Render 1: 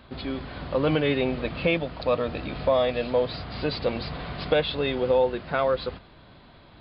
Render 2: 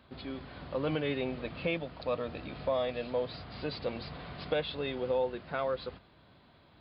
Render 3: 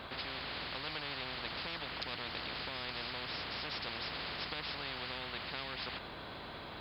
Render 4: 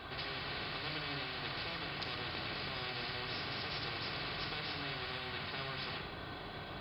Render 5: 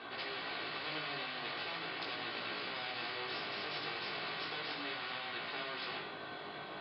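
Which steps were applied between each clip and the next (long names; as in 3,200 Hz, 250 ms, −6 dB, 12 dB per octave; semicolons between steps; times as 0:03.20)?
high-pass filter 58 Hz; level −9 dB
every bin compressed towards the loudest bin 10 to 1; level −3 dB
rectangular room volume 2,400 cubic metres, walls furnished, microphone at 3.5 metres; level −3 dB
chorus effect 0.39 Hz, delay 17 ms, depth 2.7 ms; band-pass filter 250–4,400 Hz; level +4 dB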